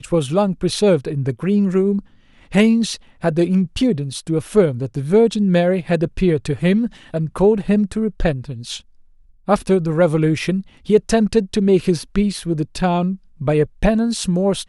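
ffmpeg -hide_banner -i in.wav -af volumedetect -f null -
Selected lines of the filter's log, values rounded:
mean_volume: -17.8 dB
max_volume: -1.5 dB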